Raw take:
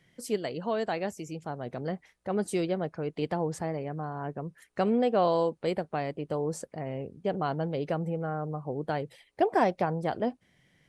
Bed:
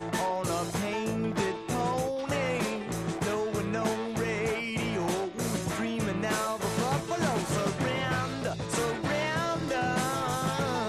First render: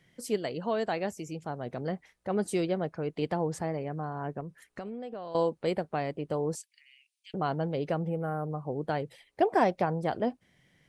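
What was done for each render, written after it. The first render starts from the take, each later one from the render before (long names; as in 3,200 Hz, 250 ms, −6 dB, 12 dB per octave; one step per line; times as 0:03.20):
0:04.40–0:05.35: downward compressor 16 to 1, threshold −35 dBFS
0:06.55–0:07.34: Butterworth high-pass 2,400 Hz
0:08.01–0:08.50: linearly interpolated sample-rate reduction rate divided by 4×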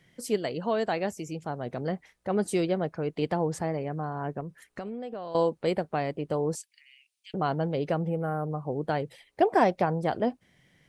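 level +2.5 dB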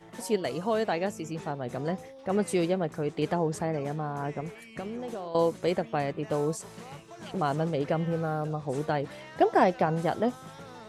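mix in bed −16 dB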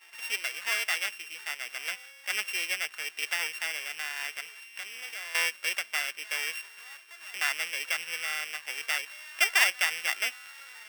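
samples sorted by size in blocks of 16 samples
high-pass with resonance 1,700 Hz, resonance Q 1.7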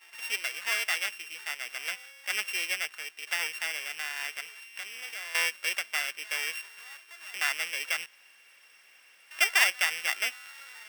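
0:02.81–0:03.27: fade out, to −10 dB
0:08.06–0:09.31: fill with room tone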